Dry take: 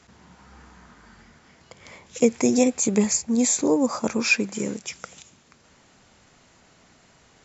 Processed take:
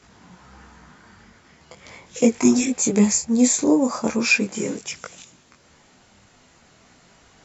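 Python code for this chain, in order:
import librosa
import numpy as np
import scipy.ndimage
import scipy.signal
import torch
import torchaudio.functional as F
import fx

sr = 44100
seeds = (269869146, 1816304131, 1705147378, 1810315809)

y = fx.spec_repair(x, sr, seeds[0], start_s=2.44, length_s=0.24, low_hz=390.0, high_hz=1600.0, source='both')
y = fx.detune_double(y, sr, cents=14)
y = y * librosa.db_to_amplitude(6.0)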